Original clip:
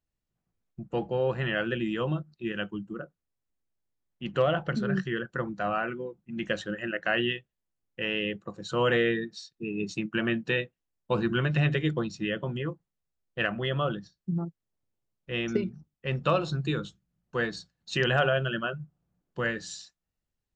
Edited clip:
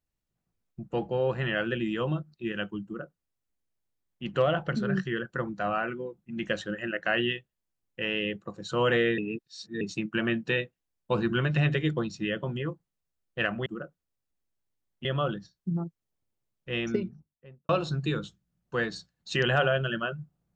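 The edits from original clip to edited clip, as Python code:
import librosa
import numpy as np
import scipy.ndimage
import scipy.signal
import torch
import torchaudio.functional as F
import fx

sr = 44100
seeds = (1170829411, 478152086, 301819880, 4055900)

y = fx.studio_fade_out(x, sr, start_s=15.4, length_s=0.9)
y = fx.edit(y, sr, fx.duplicate(start_s=2.85, length_s=1.39, to_s=13.66),
    fx.reverse_span(start_s=9.18, length_s=0.63), tone=tone)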